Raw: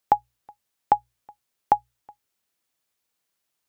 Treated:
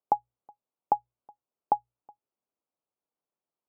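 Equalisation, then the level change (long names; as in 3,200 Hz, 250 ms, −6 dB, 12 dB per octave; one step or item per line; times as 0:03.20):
moving average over 24 samples
high-pass filter 370 Hz 6 dB per octave
high-frequency loss of the air 430 metres
0.0 dB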